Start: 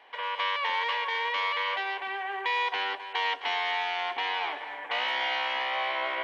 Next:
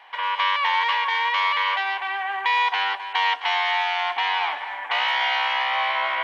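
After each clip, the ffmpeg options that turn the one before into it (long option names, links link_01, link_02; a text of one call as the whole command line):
ffmpeg -i in.wav -af "lowshelf=frequency=620:width_type=q:width=1.5:gain=-9.5,volume=6dB" out.wav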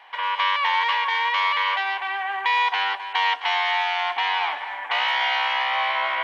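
ffmpeg -i in.wav -af anull out.wav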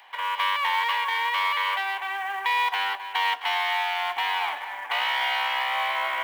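ffmpeg -i in.wav -filter_complex "[0:a]acrossover=split=860|1500|2700[link_01][link_02][link_03][link_04];[link_04]acompressor=mode=upward:threshold=-54dB:ratio=2.5[link_05];[link_01][link_02][link_03][link_05]amix=inputs=4:normalize=0,acrusher=bits=6:mode=log:mix=0:aa=0.000001,volume=-3dB" out.wav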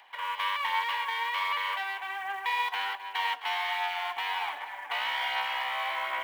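ffmpeg -i in.wav -af "aphaser=in_gain=1:out_gain=1:delay=4.7:decay=0.31:speed=1.3:type=sinusoidal,volume=-6dB" out.wav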